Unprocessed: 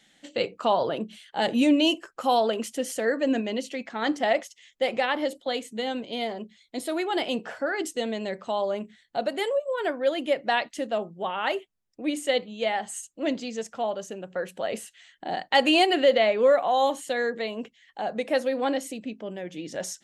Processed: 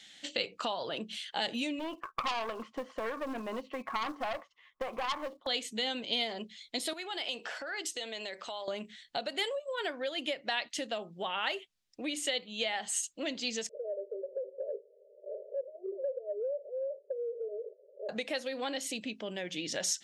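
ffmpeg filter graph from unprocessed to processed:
-filter_complex "[0:a]asettb=1/sr,asplit=3[a][b][c];[a]atrim=end=1.794[d];[b]atrim=start=1.79:end=5.47,asetpts=PTS-STARTPTS,afade=t=in:d=0.004:c=qsin,afade=t=out:st=3.676:d=0.004:c=qsin,lowpass=f=1.1k:t=q:w=12,acrusher=bits=8:mode=log:mix=0:aa=0.000001,aeval=exprs='(tanh(7.94*val(0)+0.5)-tanh(0.5))/7.94':c=same[e];[c]atrim=start=5.466[f];[d][e]acrossfade=d=0.004:c1=hsin:c2=qsin[g];[g][f]acrossfade=d=0.004:c1=qsin:c2=hsin,asettb=1/sr,asplit=3[h][i][j];[h]atrim=end=6.934[k];[i]atrim=start=6.93:end=8.68,asetpts=PTS-STARTPTS,afade=t=in:d=0.004:c=qsin,afade=t=out:st=1.746:d=0.004:c=qsin,highpass=370,acompressor=threshold=-38dB:ratio=4:attack=3.2:release=140:knee=1:detection=peak[l];[j]atrim=start=8.676[m];[k][l]acrossfade=d=0.004:c1=hsin:c2=qsin[n];[n][m]acrossfade=d=0.004:c1=qsin:c2=hsin,asettb=1/sr,asplit=3[o][p][q];[o]atrim=end=13.694[r];[p]atrim=start=13.69:end=18.09,asetpts=PTS-STARTPTS,afade=t=in:d=0.004:c=qsin,afade=t=out:st=4.396:d=0.004:c=qsin,aeval=exprs='val(0)+0.5*0.0299*sgn(val(0))':c=same,asuperpass=centerf=490:order=20:qfactor=2.1[s];[q]atrim=start=18.086[t];[r][s]acrossfade=d=0.004:c1=hsin:c2=qsin[u];[u][t]acrossfade=d=0.004:c1=qsin:c2=hsin,acompressor=threshold=-32dB:ratio=6,equalizer=f=4.1k:t=o:w=2.5:g=13.5,volume=-3.5dB"

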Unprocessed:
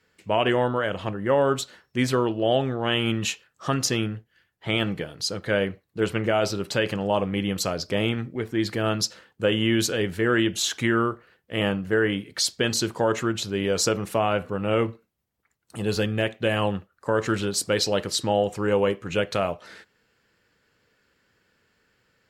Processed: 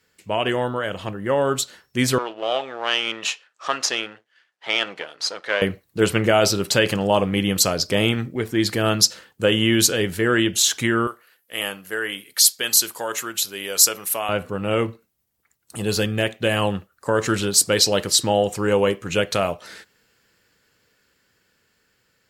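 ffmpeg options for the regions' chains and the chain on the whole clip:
-filter_complex "[0:a]asettb=1/sr,asplit=3[a][b][c];[a]atrim=end=2.184[d];[b]atrim=start=2.18:end=5.62,asetpts=PTS-STARTPTS,afade=t=in:d=0.004:c=qsin,afade=t=out:st=3.436:d=0.004:c=qsin,aeval=exprs='if(lt(val(0),0),0.447*val(0),val(0))':c=same,highpass=640,lowpass=7.1k,highshelf=f=5.4k:g=-11[e];[c]atrim=start=5.616[f];[d][e]acrossfade=d=0.004:c1=hsin:c2=qsin[g];[g][f]acrossfade=d=0.004:c1=qsin:c2=hsin,asettb=1/sr,asplit=3[h][i][j];[h]atrim=end=11.074[k];[i]atrim=start=11.07:end=14.29,asetpts=PTS-STARTPTS,afade=t=in:d=0.004:c=qsin,afade=t=out:st=3.216:d=0.004:c=qsin,highpass=f=1.1k:p=1,equalizer=f=12k:t=o:w=0.52:g=13.5[l];[j]atrim=start=14.286[m];[k][l]acrossfade=d=0.004:c1=hsin:c2=qsin[n];[n][m]acrossfade=d=0.004:c1=qsin:c2=hsin,highshelf=f=5.1k:g=11.5,dynaudnorm=f=520:g=9:m=11.5dB,volume=-1dB"

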